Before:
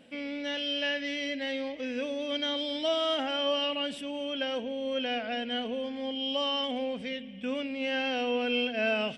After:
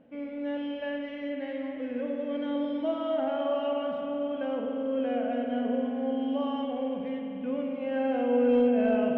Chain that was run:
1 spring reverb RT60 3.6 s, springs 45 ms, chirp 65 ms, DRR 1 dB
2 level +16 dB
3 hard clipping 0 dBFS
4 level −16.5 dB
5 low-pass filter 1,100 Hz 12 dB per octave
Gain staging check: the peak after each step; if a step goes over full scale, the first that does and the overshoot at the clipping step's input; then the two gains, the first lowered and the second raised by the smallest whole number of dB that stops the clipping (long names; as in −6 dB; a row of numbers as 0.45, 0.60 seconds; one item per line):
−12.0, +4.0, 0.0, −16.5, −16.0 dBFS
step 2, 4.0 dB
step 2 +12 dB, step 4 −12.5 dB